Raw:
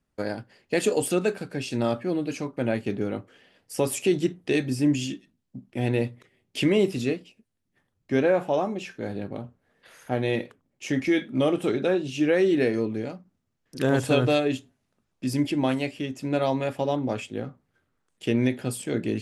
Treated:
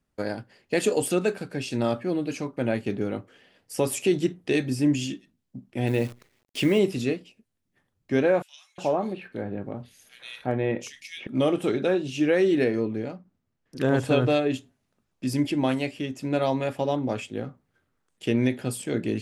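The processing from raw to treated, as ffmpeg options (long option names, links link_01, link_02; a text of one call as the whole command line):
ffmpeg -i in.wav -filter_complex "[0:a]asettb=1/sr,asplit=3[link_01][link_02][link_03];[link_01]atrim=end=5.874[link_04];[link_02]atrim=start=5.87:end=6.79,asetpts=PTS-STARTPTS,afade=type=in:duration=0.004:curve=qsin,afade=type=out:start_time=0.916:duration=0.004:curve=qsin,acrusher=bits=8:dc=4:mix=0:aa=0.000001[link_05];[link_03]atrim=start=6.786[link_06];[link_04][link_05]acrossfade=duration=0.004:curve1=hsin:curve2=qsin[link_07];[link_07][link_06]acrossfade=duration=0.004:curve1=qsin:curve2=hsin,asettb=1/sr,asplit=3[link_08][link_09][link_10];[link_08]atrim=end=8.424[link_11];[link_09]atrim=start=8.42:end=11.27,asetpts=PTS-STARTPTS,afade=type=in:duration=0.004:curve=qsin,afade=type=out:start_time=2.846:duration=0.004:curve=qsin,acrossover=split=2600[link_12][link_13];[link_12]adelay=360[link_14];[link_14][link_13]amix=inputs=2:normalize=0,atrim=end_sample=125685[link_15];[link_10]atrim=start=11.266[link_16];[link_11][link_15]acrossfade=duration=0.004:curve1=hsin:curve2=qsin[link_17];[link_17][link_16]acrossfade=duration=0.004:curve1=qsin:curve2=hsin,asettb=1/sr,asplit=3[link_18][link_19][link_20];[link_18]atrim=end=12.644[link_21];[link_19]atrim=start=12.64:end=14.54,asetpts=PTS-STARTPTS,afade=type=in:duration=0.004:curve=qsin,afade=type=out:start_time=1.896:duration=0.004:curve=qsin,highshelf=frequency=4400:gain=-8[link_22];[link_20]atrim=start=14.536[link_23];[link_21][link_22]acrossfade=duration=0.004:curve1=hsin:curve2=qsin[link_24];[link_24][link_23]acrossfade=duration=0.004:curve1=qsin:curve2=hsin" out.wav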